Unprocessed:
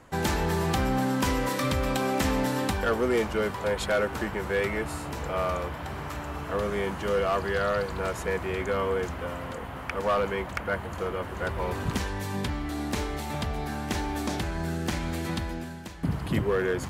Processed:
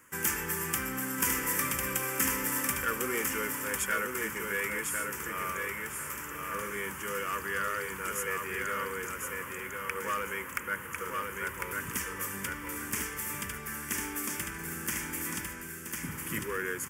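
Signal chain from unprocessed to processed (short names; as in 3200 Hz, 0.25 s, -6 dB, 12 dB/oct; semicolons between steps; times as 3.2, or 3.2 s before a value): RIAA curve recording; fixed phaser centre 1700 Hz, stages 4; on a send: feedback echo 1.05 s, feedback 23%, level -4 dB; on the sum: gain -2.5 dB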